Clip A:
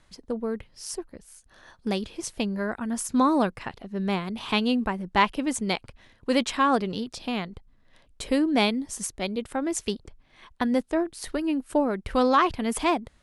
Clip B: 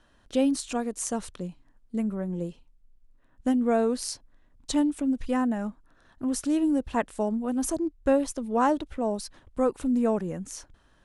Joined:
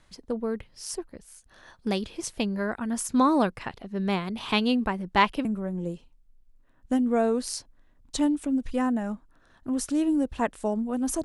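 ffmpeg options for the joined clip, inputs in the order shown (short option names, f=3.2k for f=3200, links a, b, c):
-filter_complex "[0:a]apad=whole_dur=11.24,atrim=end=11.24,atrim=end=5.452[a];[1:a]atrim=start=1.998:end=7.79[b];[a][b]acrossfade=d=0.004:c1=hsin:c2=hsin"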